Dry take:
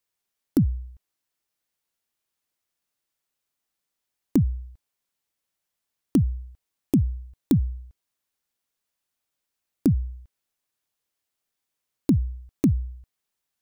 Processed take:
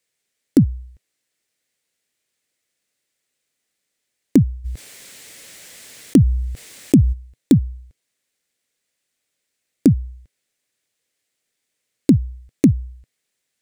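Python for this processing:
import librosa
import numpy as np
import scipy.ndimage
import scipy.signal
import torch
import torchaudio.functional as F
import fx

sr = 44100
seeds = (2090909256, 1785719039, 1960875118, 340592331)

y = fx.graphic_eq(x, sr, hz=(125, 250, 500, 1000, 2000, 4000, 8000), db=(6, 6, 10, -4, 11, 5, 10))
y = fx.env_flatten(y, sr, amount_pct=50, at=(4.64, 7.12), fade=0.02)
y = y * librosa.db_to_amplitude(-1.0)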